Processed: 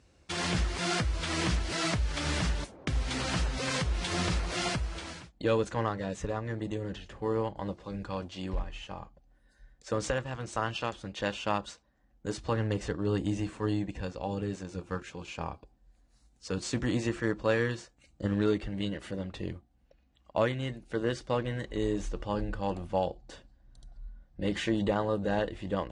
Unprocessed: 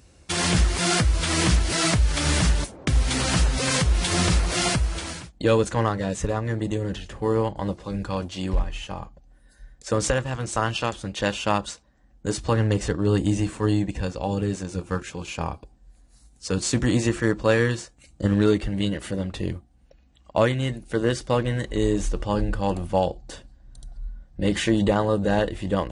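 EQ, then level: air absorption 70 m; low shelf 210 Hz -4 dB; -6.5 dB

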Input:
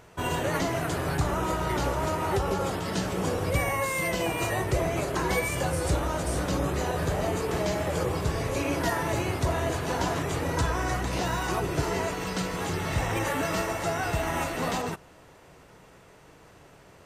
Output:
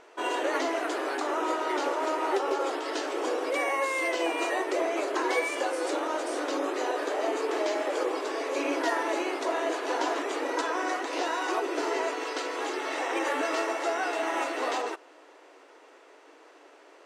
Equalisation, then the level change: brick-wall FIR high-pass 270 Hz; air absorption 65 m; +1.0 dB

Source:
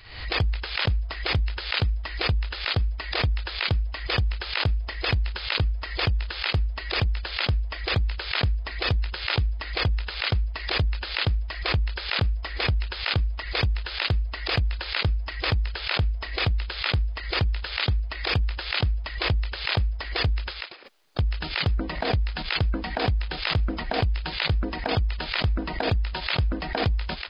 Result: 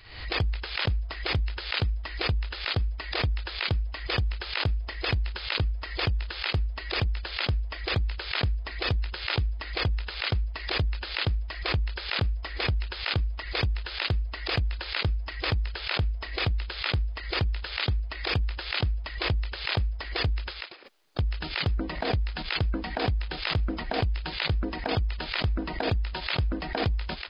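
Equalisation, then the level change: bell 330 Hz +2.5 dB 0.77 oct; -3.0 dB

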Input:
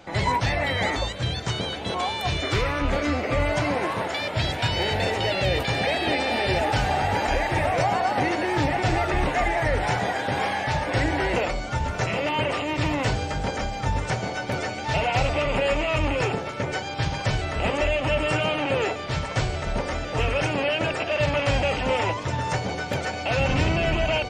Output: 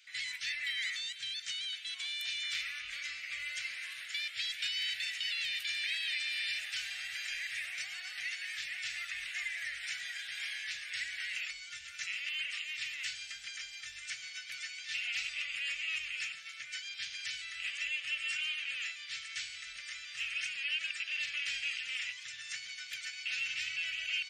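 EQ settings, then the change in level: inverse Chebyshev high-pass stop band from 1000 Hz, stop band 40 dB; -5.5 dB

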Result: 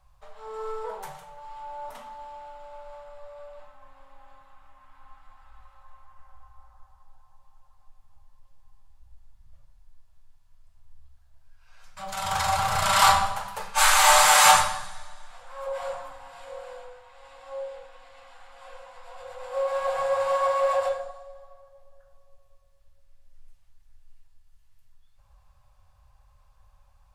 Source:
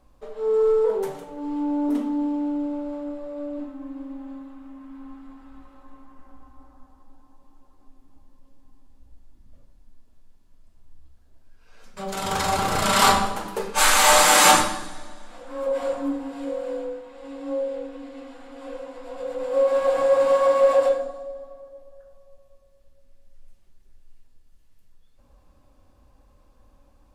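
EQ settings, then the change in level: Chebyshev band-stop 120–820 Hz, order 2; dynamic EQ 400 Hz, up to +5 dB, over -41 dBFS, Q 0.86; -1.0 dB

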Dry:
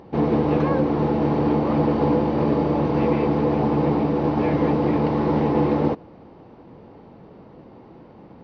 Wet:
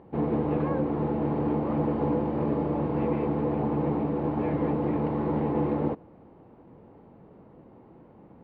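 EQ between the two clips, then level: air absorption 390 m; -6.0 dB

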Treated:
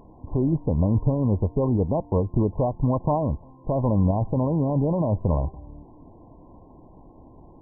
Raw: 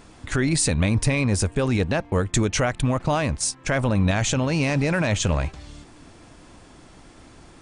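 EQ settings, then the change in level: brick-wall FIR low-pass 1100 Hz; 0.0 dB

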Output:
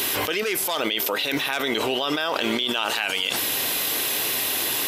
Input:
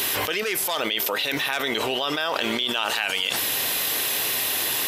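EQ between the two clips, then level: bell 300 Hz +4 dB 1 oct; notch 1800 Hz, Q 28; 0.0 dB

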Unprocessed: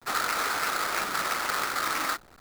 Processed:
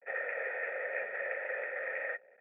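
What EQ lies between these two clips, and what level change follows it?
vocal tract filter e; HPF 260 Hz 24 dB/oct; fixed phaser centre 1100 Hz, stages 6; +8.0 dB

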